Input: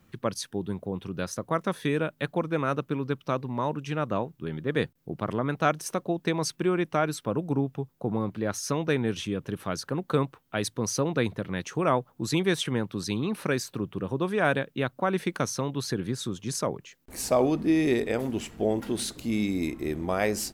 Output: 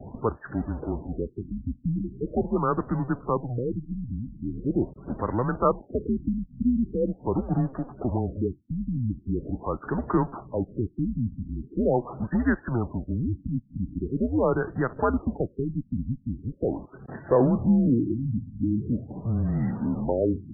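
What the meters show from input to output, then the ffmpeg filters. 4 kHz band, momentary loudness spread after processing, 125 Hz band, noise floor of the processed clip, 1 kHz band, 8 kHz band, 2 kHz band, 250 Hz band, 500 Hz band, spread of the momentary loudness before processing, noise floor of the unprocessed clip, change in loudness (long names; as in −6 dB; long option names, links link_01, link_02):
below −40 dB, 8 LU, +3.5 dB, −55 dBFS, −1.0 dB, below −40 dB, −7.0 dB, +3.0 dB, −0.5 dB, 8 LU, −66 dBFS, +1.0 dB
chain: -af "aeval=exprs='val(0)+0.5*0.0282*sgn(val(0))':channel_layout=same,afftdn=noise_reduction=29:noise_floor=-42,highpass=frequency=210:width_type=q:width=0.5412,highpass=frequency=210:width_type=q:width=1.307,lowpass=frequency=3000:width_type=q:width=0.5176,lowpass=frequency=3000:width_type=q:width=0.7071,lowpass=frequency=3000:width_type=q:width=1.932,afreqshift=-120,afftfilt=real='re*lt(b*sr/1024,260*pow(2000/260,0.5+0.5*sin(2*PI*0.42*pts/sr)))':imag='im*lt(b*sr/1024,260*pow(2000/260,0.5+0.5*sin(2*PI*0.42*pts/sr)))':win_size=1024:overlap=0.75,volume=2dB"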